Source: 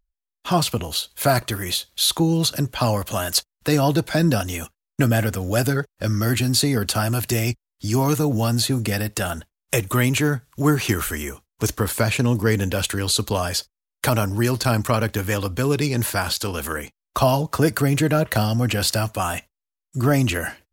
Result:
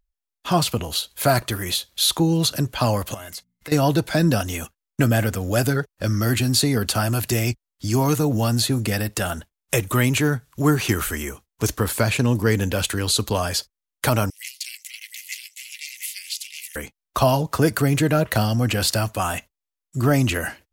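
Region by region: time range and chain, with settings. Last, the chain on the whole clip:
3.14–3.72 notches 60/120/180/240 Hz + compressor 2.5:1, threshold -40 dBFS + small resonant body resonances 2100 Hz, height 18 dB
14.3–16.76 echo 0.714 s -5 dB + ring modulator 190 Hz + rippled Chebyshev high-pass 2000 Hz, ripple 3 dB
whole clip: dry

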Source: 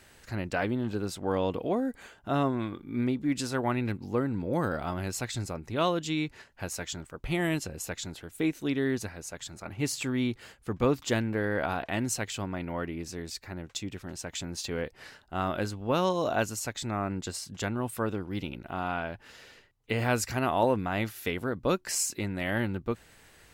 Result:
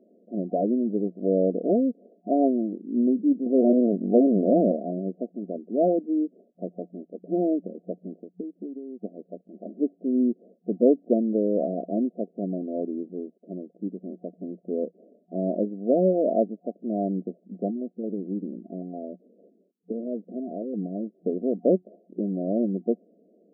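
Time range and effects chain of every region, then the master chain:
3.46–4.72 sample leveller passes 2 + HPF 95 Hz + Doppler distortion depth 0.65 ms
8.13–9.03 LPF 4700 Hz + compressor 5:1, threshold -42 dBFS + transient shaper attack +6 dB, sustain -8 dB
17.7–21.15 compressor 4:1, threshold -29 dBFS + stepped notch 8.9 Hz 530–2100 Hz
whole clip: Wiener smoothing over 41 samples; FFT band-pass 180–720 Hz; gain +8 dB

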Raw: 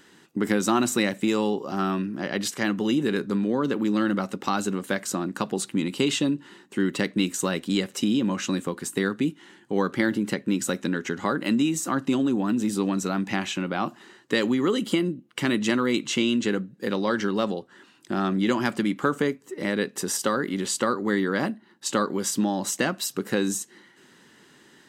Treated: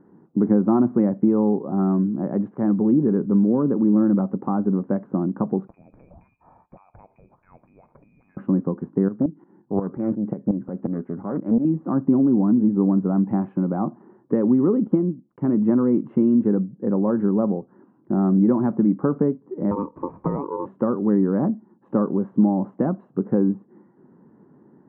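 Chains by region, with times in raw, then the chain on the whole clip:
5.67–8.37 compressor 20:1, threshold -35 dBFS + inverted band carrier 2700 Hz
9.08–11.65 tremolo saw up 5.6 Hz, depth 75% + Doppler distortion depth 0.58 ms
14.87–15.57 block floating point 5-bit + upward expander, over -35 dBFS
19.71–20.66 running mean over 8 samples + ring modulator 710 Hz + three-band squash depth 100%
whole clip: inverse Chebyshev low-pass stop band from 4400 Hz, stop band 70 dB; bell 180 Hz +8.5 dB 1.8 oct

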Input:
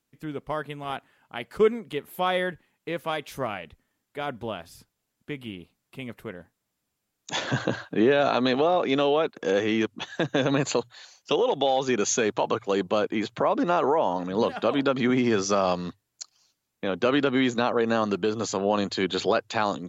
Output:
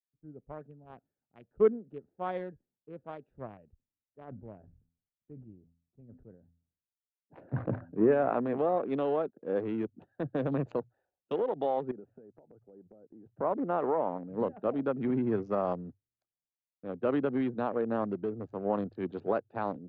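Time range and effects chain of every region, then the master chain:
4.24–8.58 LPF 2600 Hz 24 dB/oct + de-hum 84.36 Hz, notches 3 + sustainer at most 87 dB/s
11.91–13.26 LPF 1700 Hz + compressor, threshold -32 dBFS
whole clip: Wiener smoothing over 41 samples; LPF 1200 Hz 12 dB/oct; three-band expander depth 70%; gain -6 dB

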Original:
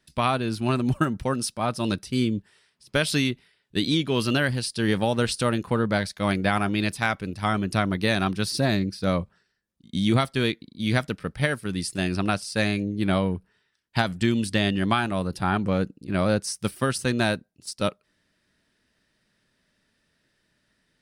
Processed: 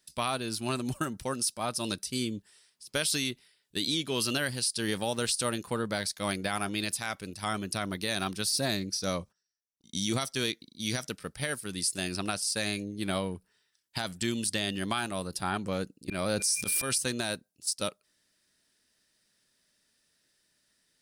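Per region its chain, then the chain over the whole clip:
8.93–11.09 gate -57 dBFS, range -18 dB + bell 5800 Hz +13 dB 0.23 oct
16.07–16.97 auto swell 0.46 s + whine 2400 Hz -56 dBFS + fast leveller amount 70%
whole clip: tone controls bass -5 dB, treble +14 dB; limiter -11.5 dBFS; gain -6.5 dB

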